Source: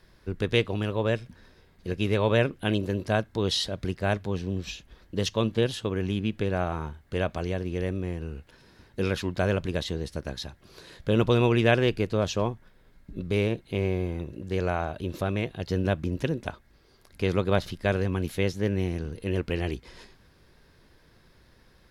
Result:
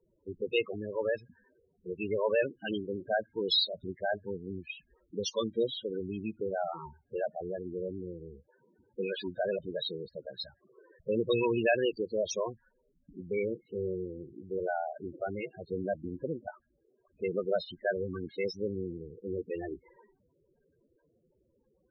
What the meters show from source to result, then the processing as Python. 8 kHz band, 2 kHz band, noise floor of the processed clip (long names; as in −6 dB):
−5.5 dB, −6.0 dB, −74 dBFS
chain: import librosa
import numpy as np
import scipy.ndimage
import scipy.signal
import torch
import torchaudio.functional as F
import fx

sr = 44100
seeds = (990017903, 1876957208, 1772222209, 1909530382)

y = fx.riaa(x, sr, side='recording')
y = fx.env_lowpass(y, sr, base_hz=920.0, full_db=-20.5)
y = fx.spec_topn(y, sr, count=8)